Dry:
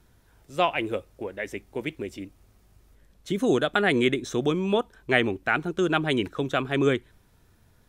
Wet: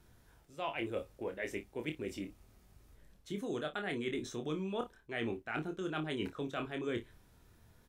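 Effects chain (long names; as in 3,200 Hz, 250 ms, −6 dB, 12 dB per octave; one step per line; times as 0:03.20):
reversed playback
downward compressor 12 to 1, threshold −31 dBFS, peak gain reduction 16.5 dB
reversed playback
ambience of single reflections 26 ms −6 dB, 55 ms −16.5 dB
level −4 dB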